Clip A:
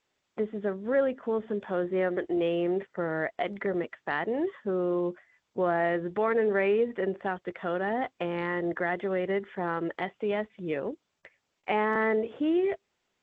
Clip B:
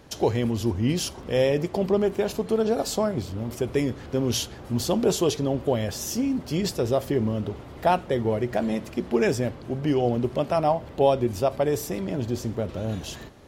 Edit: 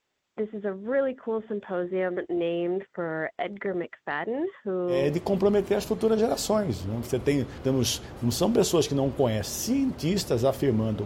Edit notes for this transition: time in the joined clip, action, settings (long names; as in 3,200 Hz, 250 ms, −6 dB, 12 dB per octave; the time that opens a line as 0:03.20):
clip A
0:05.02: continue with clip B from 0:01.50, crossfade 0.30 s equal-power